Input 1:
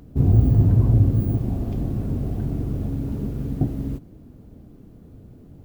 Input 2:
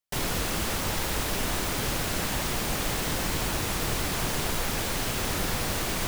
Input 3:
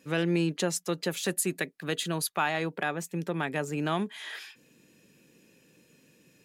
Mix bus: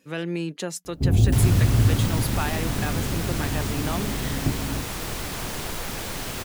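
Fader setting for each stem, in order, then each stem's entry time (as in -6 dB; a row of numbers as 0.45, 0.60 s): -2.5, -2.5, -2.0 dB; 0.85, 1.20, 0.00 s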